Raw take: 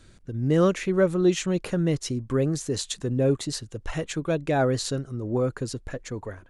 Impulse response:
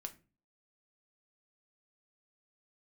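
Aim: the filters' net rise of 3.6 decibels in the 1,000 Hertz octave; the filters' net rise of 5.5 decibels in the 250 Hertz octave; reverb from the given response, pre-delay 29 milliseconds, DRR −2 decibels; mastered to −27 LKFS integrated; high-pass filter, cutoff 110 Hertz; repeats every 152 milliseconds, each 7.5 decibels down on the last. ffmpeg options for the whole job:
-filter_complex "[0:a]highpass=110,equalizer=frequency=250:width_type=o:gain=8,equalizer=frequency=1000:width_type=o:gain=4.5,aecho=1:1:152|304|456|608|760:0.422|0.177|0.0744|0.0312|0.0131,asplit=2[link_01][link_02];[1:a]atrim=start_sample=2205,adelay=29[link_03];[link_02][link_03]afir=irnorm=-1:irlink=0,volume=5.5dB[link_04];[link_01][link_04]amix=inputs=2:normalize=0,volume=-9.5dB"

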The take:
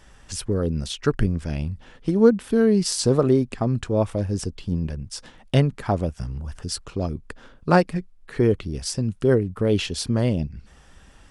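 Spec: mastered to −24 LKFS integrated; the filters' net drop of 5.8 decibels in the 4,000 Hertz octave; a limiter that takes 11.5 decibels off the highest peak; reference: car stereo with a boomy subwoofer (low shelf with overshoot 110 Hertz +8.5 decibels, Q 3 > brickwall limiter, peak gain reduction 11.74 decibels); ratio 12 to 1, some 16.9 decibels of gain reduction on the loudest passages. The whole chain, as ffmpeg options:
ffmpeg -i in.wav -af "equalizer=frequency=4000:width_type=o:gain=-8,acompressor=threshold=-26dB:ratio=12,alimiter=level_in=2dB:limit=-24dB:level=0:latency=1,volume=-2dB,lowshelf=frequency=110:width_type=q:width=3:gain=8.5,volume=10.5dB,alimiter=limit=-14.5dB:level=0:latency=1" out.wav

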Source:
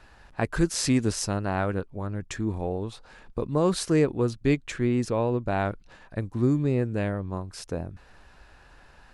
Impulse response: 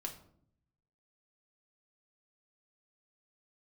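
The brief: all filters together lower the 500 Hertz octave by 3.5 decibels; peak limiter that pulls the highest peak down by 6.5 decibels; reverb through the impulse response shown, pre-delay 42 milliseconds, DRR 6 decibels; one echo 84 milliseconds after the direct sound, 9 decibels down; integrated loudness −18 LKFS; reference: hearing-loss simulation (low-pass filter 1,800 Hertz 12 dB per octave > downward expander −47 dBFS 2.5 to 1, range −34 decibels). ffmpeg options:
-filter_complex "[0:a]equalizer=frequency=500:width_type=o:gain=-4.5,alimiter=limit=-18dB:level=0:latency=1,aecho=1:1:84:0.355,asplit=2[link_01][link_02];[1:a]atrim=start_sample=2205,adelay=42[link_03];[link_02][link_03]afir=irnorm=-1:irlink=0,volume=-4.5dB[link_04];[link_01][link_04]amix=inputs=2:normalize=0,lowpass=1800,agate=range=-34dB:threshold=-47dB:ratio=2.5,volume=11.5dB"

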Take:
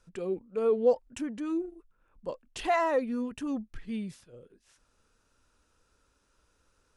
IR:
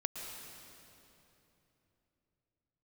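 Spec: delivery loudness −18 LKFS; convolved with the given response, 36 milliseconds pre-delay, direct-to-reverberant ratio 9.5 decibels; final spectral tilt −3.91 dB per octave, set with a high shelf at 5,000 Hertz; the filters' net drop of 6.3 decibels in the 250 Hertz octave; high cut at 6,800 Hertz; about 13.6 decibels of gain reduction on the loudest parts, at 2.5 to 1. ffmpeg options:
-filter_complex "[0:a]lowpass=6800,equalizer=frequency=250:width_type=o:gain=-8,highshelf=frequency=5000:gain=-8,acompressor=threshold=-41dB:ratio=2.5,asplit=2[link_01][link_02];[1:a]atrim=start_sample=2205,adelay=36[link_03];[link_02][link_03]afir=irnorm=-1:irlink=0,volume=-11dB[link_04];[link_01][link_04]amix=inputs=2:normalize=0,volume=24.5dB"

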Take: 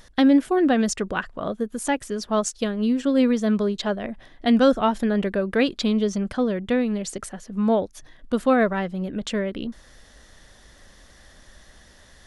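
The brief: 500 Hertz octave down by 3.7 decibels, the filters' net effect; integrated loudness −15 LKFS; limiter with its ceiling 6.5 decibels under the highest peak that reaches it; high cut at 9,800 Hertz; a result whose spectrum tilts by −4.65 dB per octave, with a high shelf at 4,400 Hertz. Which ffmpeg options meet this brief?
ffmpeg -i in.wav -af "lowpass=9800,equalizer=frequency=500:width_type=o:gain=-4.5,highshelf=frequency=4400:gain=3.5,volume=10.5dB,alimiter=limit=-4dB:level=0:latency=1" out.wav

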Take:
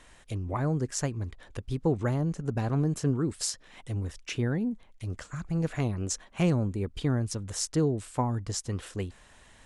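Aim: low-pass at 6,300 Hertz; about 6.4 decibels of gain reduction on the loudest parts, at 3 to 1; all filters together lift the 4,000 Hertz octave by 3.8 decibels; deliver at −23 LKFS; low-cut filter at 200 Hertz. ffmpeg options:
ffmpeg -i in.wav -af "highpass=200,lowpass=6300,equalizer=frequency=4000:width_type=o:gain=7,acompressor=threshold=-31dB:ratio=3,volume=14dB" out.wav

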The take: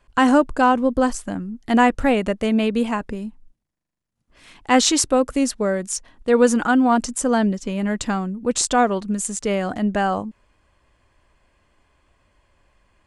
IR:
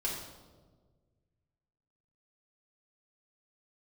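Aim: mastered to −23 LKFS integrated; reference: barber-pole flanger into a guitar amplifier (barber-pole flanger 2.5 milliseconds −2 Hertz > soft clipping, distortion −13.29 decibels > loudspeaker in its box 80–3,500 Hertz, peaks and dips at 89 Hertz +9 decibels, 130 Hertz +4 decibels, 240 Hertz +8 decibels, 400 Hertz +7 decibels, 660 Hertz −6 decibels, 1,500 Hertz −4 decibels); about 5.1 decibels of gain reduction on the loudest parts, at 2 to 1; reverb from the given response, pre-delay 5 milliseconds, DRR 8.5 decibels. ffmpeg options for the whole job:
-filter_complex "[0:a]acompressor=threshold=-19dB:ratio=2,asplit=2[link_01][link_02];[1:a]atrim=start_sample=2205,adelay=5[link_03];[link_02][link_03]afir=irnorm=-1:irlink=0,volume=-12.5dB[link_04];[link_01][link_04]amix=inputs=2:normalize=0,asplit=2[link_05][link_06];[link_06]adelay=2.5,afreqshift=-2[link_07];[link_05][link_07]amix=inputs=2:normalize=1,asoftclip=threshold=-20dB,highpass=80,equalizer=frequency=89:width_type=q:width=4:gain=9,equalizer=frequency=130:width_type=q:width=4:gain=4,equalizer=frequency=240:width_type=q:width=4:gain=8,equalizer=frequency=400:width_type=q:width=4:gain=7,equalizer=frequency=660:width_type=q:width=4:gain=-6,equalizer=frequency=1500:width_type=q:width=4:gain=-4,lowpass=frequency=3500:width=0.5412,lowpass=frequency=3500:width=1.3066,volume=1.5dB"

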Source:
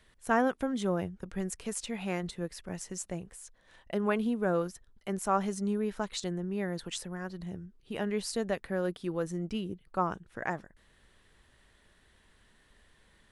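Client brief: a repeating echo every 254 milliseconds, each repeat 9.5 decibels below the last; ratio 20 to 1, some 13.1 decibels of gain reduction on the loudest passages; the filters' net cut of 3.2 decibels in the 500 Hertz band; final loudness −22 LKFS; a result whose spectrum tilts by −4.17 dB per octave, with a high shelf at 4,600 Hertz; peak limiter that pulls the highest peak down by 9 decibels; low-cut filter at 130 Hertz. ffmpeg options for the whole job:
ffmpeg -i in.wav -af "highpass=130,equalizer=frequency=500:width_type=o:gain=-4,highshelf=frequency=4600:gain=7,acompressor=threshold=-35dB:ratio=20,alimiter=level_in=6dB:limit=-24dB:level=0:latency=1,volume=-6dB,aecho=1:1:254|508|762|1016:0.335|0.111|0.0365|0.012,volume=19dB" out.wav

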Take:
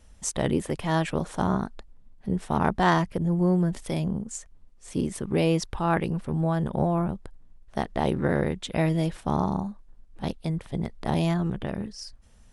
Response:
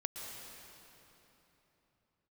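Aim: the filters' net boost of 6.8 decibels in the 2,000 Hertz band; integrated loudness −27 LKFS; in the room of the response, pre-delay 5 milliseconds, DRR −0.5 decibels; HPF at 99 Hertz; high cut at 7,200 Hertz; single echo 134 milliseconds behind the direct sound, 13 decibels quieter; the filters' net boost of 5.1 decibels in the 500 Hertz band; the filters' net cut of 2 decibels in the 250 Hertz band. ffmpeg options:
-filter_complex "[0:a]highpass=99,lowpass=7200,equalizer=frequency=250:width_type=o:gain=-5.5,equalizer=frequency=500:width_type=o:gain=7.5,equalizer=frequency=2000:width_type=o:gain=8,aecho=1:1:134:0.224,asplit=2[link_01][link_02];[1:a]atrim=start_sample=2205,adelay=5[link_03];[link_02][link_03]afir=irnorm=-1:irlink=0,volume=0dB[link_04];[link_01][link_04]amix=inputs=2:normalize=0,volume=-4.5dB"

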